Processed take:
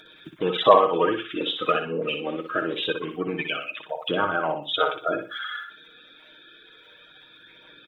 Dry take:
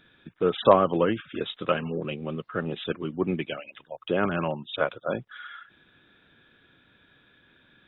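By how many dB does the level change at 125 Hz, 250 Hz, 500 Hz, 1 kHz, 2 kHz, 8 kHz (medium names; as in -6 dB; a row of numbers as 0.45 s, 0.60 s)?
-5.5 dB, -1.5 dB, +2.0 dB, +5.0 dB, +5.5 dB, no reading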